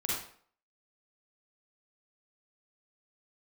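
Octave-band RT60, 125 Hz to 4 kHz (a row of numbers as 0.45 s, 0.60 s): 0.45 s, 0.50 s, 0.55 s, 0.55 s, 0.50 s, 0.45 s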